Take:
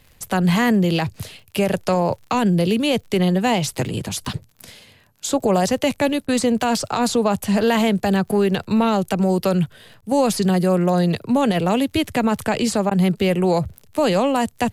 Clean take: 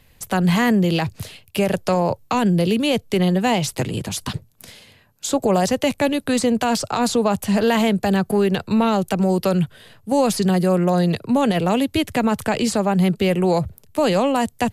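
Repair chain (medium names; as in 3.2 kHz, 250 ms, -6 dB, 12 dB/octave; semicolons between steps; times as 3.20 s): de-click; interpolate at 6.27/10.01/12.90 s, 11 ms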